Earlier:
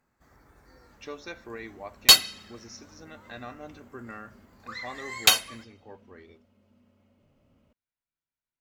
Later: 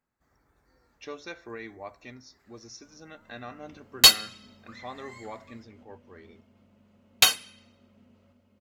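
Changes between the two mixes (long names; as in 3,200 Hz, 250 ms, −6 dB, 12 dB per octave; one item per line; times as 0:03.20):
first sound −10.5 dB
second sound: entry +1.95 s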